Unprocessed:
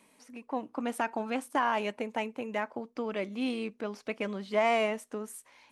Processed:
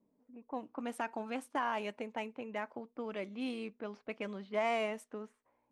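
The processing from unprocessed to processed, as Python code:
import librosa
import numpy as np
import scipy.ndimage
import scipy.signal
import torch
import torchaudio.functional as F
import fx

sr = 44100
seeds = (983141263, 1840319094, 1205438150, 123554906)

y = fx.env_lowpass(x, sr, base_hz=400.0, full_db=-29.0)
y = y * librosa.db_to_amplitude(-6.5)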